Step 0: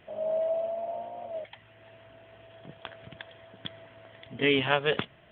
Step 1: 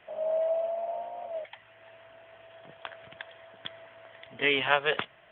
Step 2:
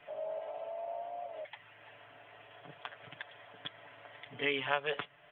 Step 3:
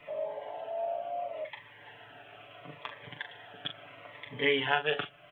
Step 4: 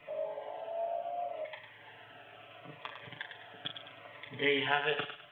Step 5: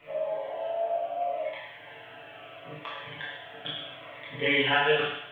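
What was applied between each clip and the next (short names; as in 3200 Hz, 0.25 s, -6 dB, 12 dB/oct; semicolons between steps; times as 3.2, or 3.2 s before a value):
three-band isolator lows -13 dB, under 530 Hz, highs -14 dB, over 3500 Hz; gain +3 dB
comb 6.9 ms, depth 86%; compressor 1.5:1, threshold -42 dBFS, peak gain reduction 10.5 dB; gain -2.5 dB
doubler 40 ms -8.5 dB; cascading phaser falling 0.73 Hz; gain +6.5 dB
thinning echo 0.103 s, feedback 38%, high-pass 880 Hz, level -7 dB; gain -2.5 dB
reverb, pre-delay 15 ms, DRR -6 dB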